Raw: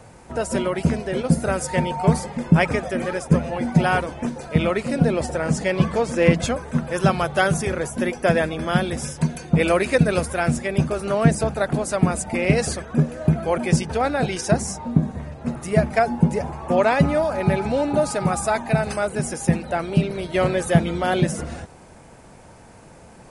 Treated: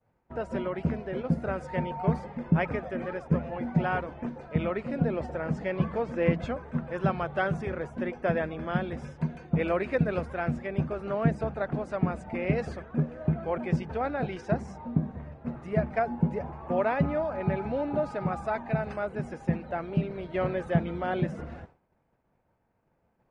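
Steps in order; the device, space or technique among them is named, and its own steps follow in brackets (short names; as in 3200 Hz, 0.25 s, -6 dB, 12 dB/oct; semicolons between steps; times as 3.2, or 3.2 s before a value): hearing-loss simulation (LPF 2200 Hz 12 dB/oct; expander -34 dBFS); gain -8.5 dB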